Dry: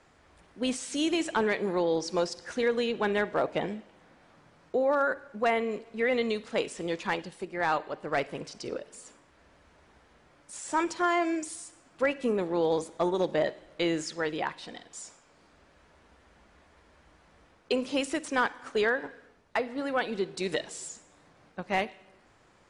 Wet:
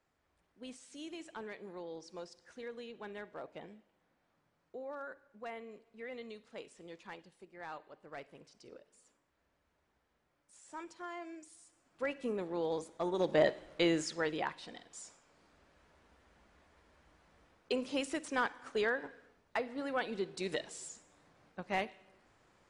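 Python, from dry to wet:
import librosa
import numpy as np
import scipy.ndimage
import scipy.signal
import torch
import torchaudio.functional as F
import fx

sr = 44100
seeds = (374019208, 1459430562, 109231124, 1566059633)

y = fx.gain(x, sr, db=fx.line((11.52, -18.5), (12.11, -9.0), (13.02, -9.0), (13.45, 0.5), (14.73, -6.5)))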